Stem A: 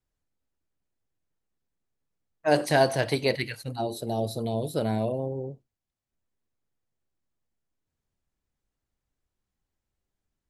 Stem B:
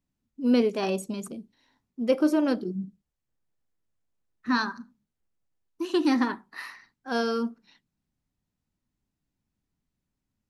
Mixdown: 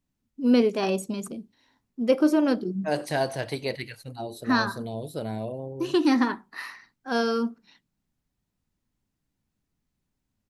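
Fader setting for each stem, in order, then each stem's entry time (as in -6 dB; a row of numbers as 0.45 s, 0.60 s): -5.0 dB, +2.0 dB; 0.40 s, 0.00 s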